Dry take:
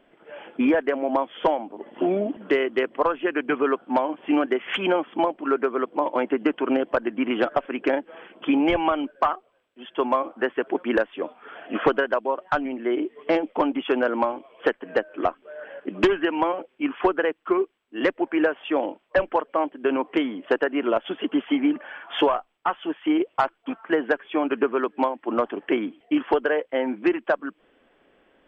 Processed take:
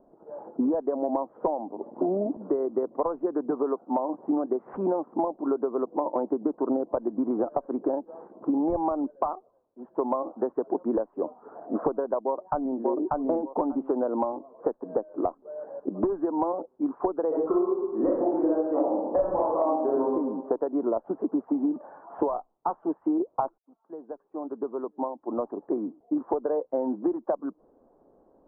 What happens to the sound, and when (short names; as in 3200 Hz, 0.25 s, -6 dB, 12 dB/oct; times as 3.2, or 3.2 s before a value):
3.51–3.99 HPF 240 Hz 6 dB/oct
12.21–12.82 echo throw 0.59 s, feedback 15%, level -0.5 dB
17.28–20 reverb throw, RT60 0.82 s, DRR -9 dB
23.58–27.12 fade in
whole clip: steep low-pass 1000 Hz 36 dB/oct; compressor, threshold -24 dBFS; gain +1.5 dB